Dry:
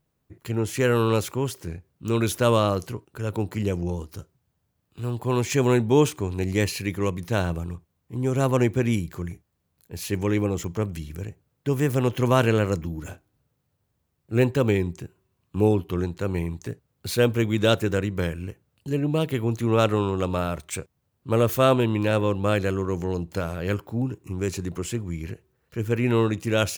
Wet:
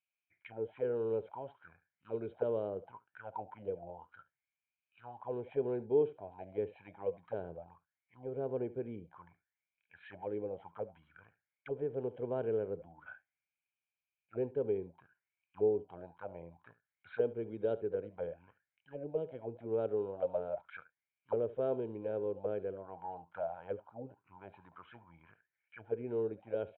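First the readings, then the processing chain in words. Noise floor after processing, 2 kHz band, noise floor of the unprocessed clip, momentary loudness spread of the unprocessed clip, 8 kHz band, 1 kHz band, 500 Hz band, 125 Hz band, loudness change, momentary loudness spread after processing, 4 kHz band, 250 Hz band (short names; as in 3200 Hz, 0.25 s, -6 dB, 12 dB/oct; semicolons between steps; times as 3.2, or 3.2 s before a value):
under -85 dBFS, -23.0 dB, -75 dBFS, 16 LU, under -40 dB, -17.0 dB, -10.5 dB, -25.5 dB, -13.5 dB, 19 LU, under -30 dB, -20.0 dB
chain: comb 1.3 ms, depth 58%; on a send: echo 71 ms -18 dB; on the sum: downsampling 8000 Hz; auto-wah 420–2500 Hz, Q 8.9, down, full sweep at -19 dBFS; low shelf 60 Hz +7 dB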